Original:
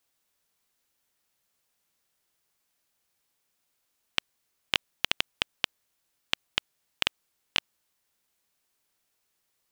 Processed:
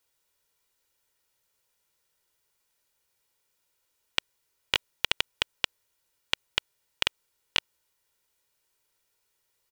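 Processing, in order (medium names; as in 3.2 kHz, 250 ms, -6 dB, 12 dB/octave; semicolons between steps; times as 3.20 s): comb 2.1 ms, depth 48%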